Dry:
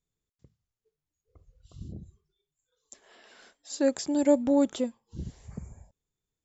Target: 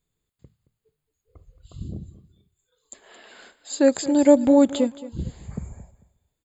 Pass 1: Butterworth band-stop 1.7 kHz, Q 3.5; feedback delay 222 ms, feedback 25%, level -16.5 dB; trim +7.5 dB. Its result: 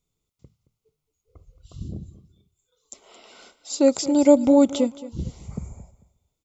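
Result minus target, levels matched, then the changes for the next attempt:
2 kHz band -5.0 dB
change: Butterworth band-stop 5.7 kHz, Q 3.5

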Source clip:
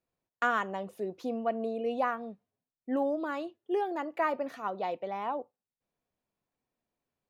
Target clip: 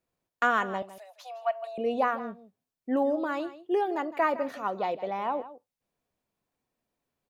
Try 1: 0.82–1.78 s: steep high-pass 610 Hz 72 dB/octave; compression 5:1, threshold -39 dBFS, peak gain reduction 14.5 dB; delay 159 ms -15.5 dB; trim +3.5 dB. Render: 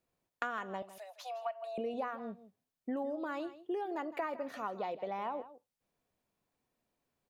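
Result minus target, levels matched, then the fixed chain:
compression: peak gain reduction +14.5 dB
0.82–1.78 s: steep high-pass 610 Hz 72 dB/octave; delay 159 ms -15.5 dB; trim +3.5 dB

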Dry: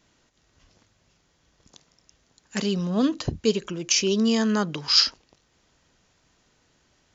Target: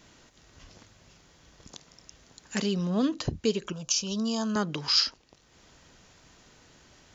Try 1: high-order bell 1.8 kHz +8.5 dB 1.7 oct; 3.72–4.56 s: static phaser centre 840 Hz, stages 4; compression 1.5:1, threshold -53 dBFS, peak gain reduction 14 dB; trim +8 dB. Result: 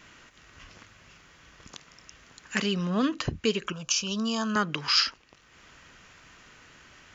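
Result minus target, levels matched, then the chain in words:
2 kHz band +7.0 dB
3.72–4.56 s: static phaser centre 840 Hz, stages 4; compression 1.5:1, threshold -53 dBFS, peak gain reduction 14 dB; trim +8 dB

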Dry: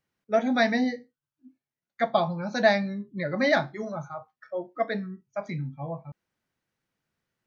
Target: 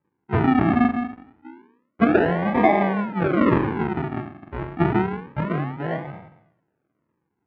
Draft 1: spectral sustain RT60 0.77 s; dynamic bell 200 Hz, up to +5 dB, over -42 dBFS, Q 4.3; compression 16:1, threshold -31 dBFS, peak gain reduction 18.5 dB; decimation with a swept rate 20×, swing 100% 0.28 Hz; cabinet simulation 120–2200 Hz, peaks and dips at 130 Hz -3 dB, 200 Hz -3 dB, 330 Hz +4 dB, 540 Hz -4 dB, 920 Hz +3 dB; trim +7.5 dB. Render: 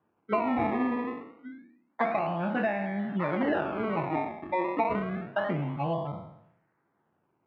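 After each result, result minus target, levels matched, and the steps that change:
compression: peak gain reduction +11 dB; decimation with a swept rate: distortion -13 dB
change: compression 16:1, threshold -19.5 dBFS, peak gain reduction 8 dB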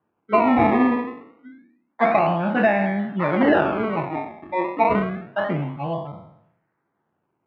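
decimation with a swept rate: distortion -12 dB
change: decimation with a swept rate 61×, swing 100% 0.28 Hz

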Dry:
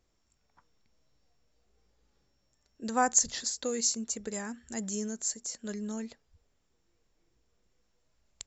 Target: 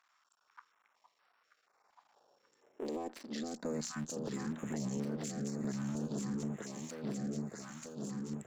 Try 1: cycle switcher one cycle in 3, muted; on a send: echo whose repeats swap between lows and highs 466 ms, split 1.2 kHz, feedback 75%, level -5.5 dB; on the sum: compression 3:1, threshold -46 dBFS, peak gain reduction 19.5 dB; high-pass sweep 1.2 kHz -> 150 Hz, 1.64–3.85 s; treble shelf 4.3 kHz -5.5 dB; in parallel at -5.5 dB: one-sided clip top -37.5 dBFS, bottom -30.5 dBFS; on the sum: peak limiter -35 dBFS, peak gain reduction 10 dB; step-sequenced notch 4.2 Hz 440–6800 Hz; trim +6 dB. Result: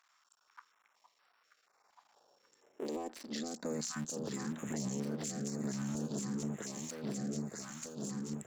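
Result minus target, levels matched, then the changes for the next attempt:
one-sided clip: distortion -7 dB; 8 kHz band +4.0 dB
change: treble shelf 4.3 kHz -13.5 dB; change: one-sided clip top -46 dBFS, bottom -30.5 dBFS

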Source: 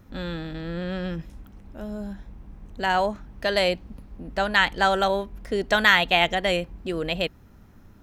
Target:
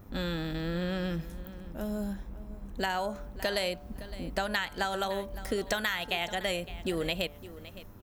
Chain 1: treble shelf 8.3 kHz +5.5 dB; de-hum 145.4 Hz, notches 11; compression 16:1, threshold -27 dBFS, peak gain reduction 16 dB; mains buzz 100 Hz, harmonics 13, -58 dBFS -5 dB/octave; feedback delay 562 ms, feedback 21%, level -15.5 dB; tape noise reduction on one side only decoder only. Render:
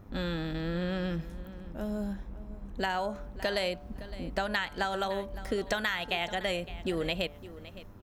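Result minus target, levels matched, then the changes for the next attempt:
8 kHz band -5.0 dB
change: treble shelf 8.3 kHz +17.5 dB

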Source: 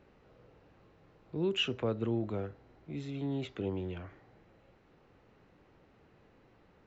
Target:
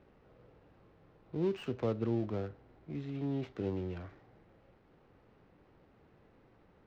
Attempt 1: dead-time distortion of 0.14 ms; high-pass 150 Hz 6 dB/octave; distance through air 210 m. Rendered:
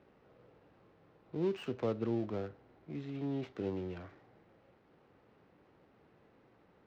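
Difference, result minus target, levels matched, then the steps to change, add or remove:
125 Hz band -2.5 dB
remove: high-pass 150 Hz 6 dB/octave

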